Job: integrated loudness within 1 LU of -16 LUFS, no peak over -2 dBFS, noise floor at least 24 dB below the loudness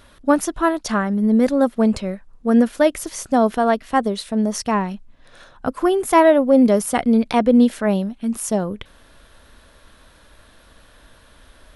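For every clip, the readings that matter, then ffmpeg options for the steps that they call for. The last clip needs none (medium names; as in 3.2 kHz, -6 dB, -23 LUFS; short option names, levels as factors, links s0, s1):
loudness -18.5 LUFS; peak level -2.5 dBFS; loudness target -16.0 LUFS
-> -af "volume=1.33,alimiter=limit=0.794:level=0:latency=1"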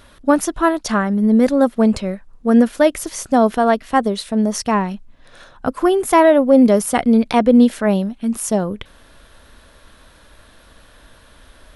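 loudness -16.0 LUFS; peak level -2.0 dBFS; noise floor -48 dBFS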